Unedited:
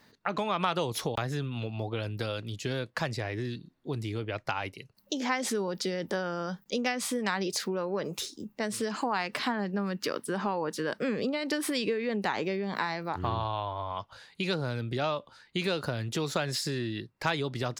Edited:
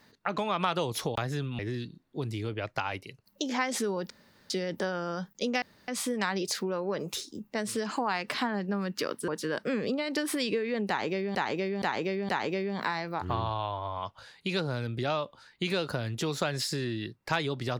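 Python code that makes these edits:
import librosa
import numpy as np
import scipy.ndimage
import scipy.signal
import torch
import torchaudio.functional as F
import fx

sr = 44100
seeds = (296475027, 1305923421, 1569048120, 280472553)

y = fx.edit(x, sr, fx.cut(start_s=1.59, length_s=1.71),
    fx.insert_room_tone(at_s=5.81, length_s=0.4),
    fx.insert_room_tone(at_s=6.93, length_s=0.26),
    fx.cut(start_s=10.33, length_s=0.3),
    fx.repeat(start_s=12.23, length_s=0.47, count=4), tone=tone)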